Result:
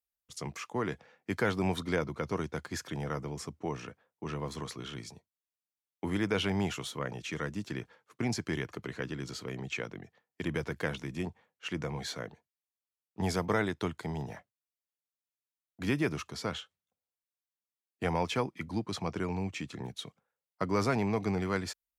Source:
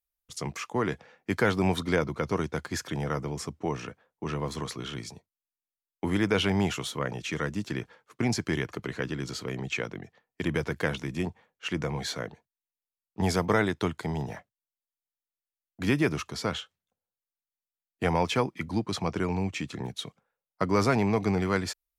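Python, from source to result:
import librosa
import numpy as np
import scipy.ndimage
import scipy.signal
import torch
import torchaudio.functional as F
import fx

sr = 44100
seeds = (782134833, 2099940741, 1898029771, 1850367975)

y = scipy.signal.sosfilt(scipy.signal.butter(2, 41.0, 'highpass', fs=sr, output='sos'), x)
y = y * librosa.db_to_amplitude(-5.0)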